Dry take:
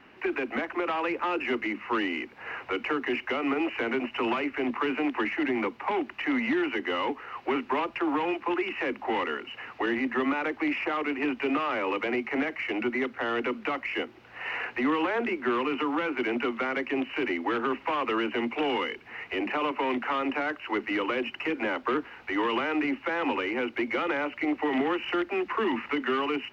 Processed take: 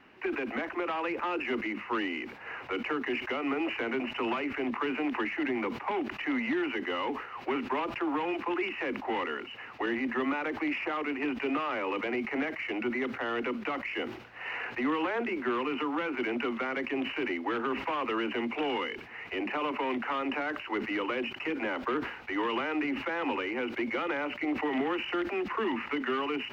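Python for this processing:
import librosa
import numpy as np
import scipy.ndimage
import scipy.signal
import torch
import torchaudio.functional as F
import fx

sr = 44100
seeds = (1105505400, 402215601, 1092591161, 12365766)

y = fx.sustainer(x, sr, db_per_s=79.0)
y = F.gain(torch.from_numpy(y), -3.5).numpy()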